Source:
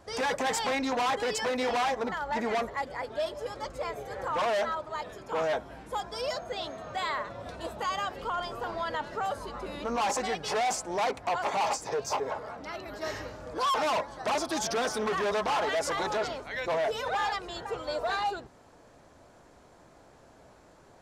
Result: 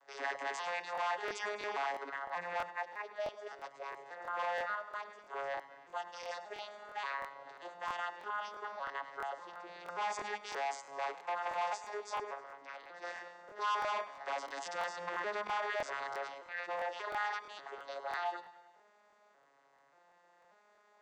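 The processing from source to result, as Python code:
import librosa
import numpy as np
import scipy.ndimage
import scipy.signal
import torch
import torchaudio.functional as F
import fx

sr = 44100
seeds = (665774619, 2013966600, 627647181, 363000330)

y = fx.vocoder_arp(x, sr, chord='major triad', root=49, every_ms=586)
y = scipy.signal.sosfilt(scipy.signal.butter(2, 870.0, 'highpass', fs=sr, output='sos'), y)
y = fx.peak_eq(y, sr, hz=1800.0, db=5.0, octaves=0.52)
y = fx.echo_feedback(y, sr, ms=102, feedback_pct=55, wet_db=-16)
y = fx.buffer_crackle(y, sr, first_s=0.93, period_s=0.33, block=1024, kind='repeat')
y = y * 10.0 ** (-2.5 / 20.0)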